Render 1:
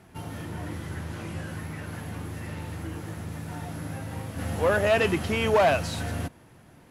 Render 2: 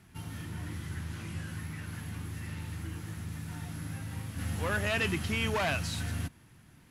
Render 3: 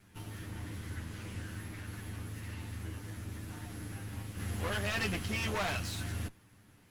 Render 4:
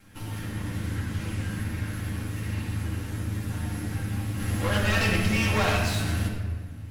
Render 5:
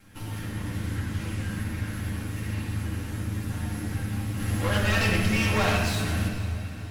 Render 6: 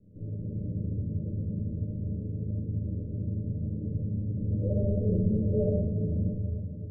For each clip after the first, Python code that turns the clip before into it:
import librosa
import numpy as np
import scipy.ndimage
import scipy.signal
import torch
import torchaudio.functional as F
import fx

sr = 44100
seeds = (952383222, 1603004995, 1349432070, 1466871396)

y1 = fx.peak_eq(x, sr, hz=570.0, db=-13.0, octaves=1.7)
y1 = y1 * 10.0 ** (-1.5 / 20.0)
y2 = fx.lower_of_two(y1, sr, delay_ms=9.9)
y2 = y2 * 10.0 ** (-2.0 / 20.0)
y3 = fx.room_shoebox(y2, sr, seeds[0], volume_m3=1600.0, walls='mixed', distance_m=2.2)
y3 = y3 * 10.0 ** (5.5 / 20.0)
y4 = fx.echo_diffused(y3, sr, ms=479, feedback_pct=51, wet_db=-15)
y5 = scipy.signal.sosfilt(scipy.signal.cheby1(6, 9, 610.0, 'lowpass', fs=sr, output='sos'), y4)
y5 = y5 * 10.0 ** (3.5 / 20.0)